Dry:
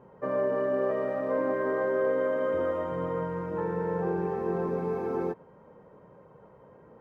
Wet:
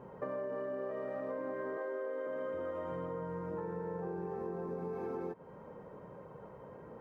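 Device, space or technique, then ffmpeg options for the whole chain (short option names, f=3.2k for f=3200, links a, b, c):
serial compression, leveller first: -filter_complex "[0:a]asettb=1/sr,asplit=3[a][b][c];[a]atrim=end=1.774[d];[b]atrim=start=1.77:end=2.27,asetpts=PTS-STARTPTS,afade=t=in:d=0.004:c=qsin,afade=t=out:st=0.496:d=0.004:c=qsin,highpass=f=280:w=0.5412,highpass=f=280:w=1.3066[e];[c]atrim=start=2.266[f];[d][e]acrossfade=d=0.004:c1=hsin:c2=qsin[g];[g][f]acrossfade=d=0.004:c1=qsin:c2=hsin,acompressor=threshold=-31dB:ratio=2.5,acompressor=threshold=-41dB:ratio=4,asettb=1/sr,asplit=3[h][i][j];[h]atrim=end=3.074[k];[i]atrim=start=3.07:end=4.93,asetpts=PTS-STARTPTS,afade=t=in:d=0.004:c=qsin,afade=t=out:st=1.856:d=0.004:c=qsin,equalizer=f=2.7k:w=0.97:g=-5[l];[j]atrim=start=4.926[m];[k][l]acrossfade=d=0.004:c1=hsin:c2=qsin[n];[n][m]acrossfade=d=0.004:c1=qsin:c2=hsin,volume=3dB"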